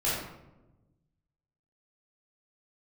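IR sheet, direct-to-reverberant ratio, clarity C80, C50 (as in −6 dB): −9.0 dB, 3.5 dB, −0.5 dB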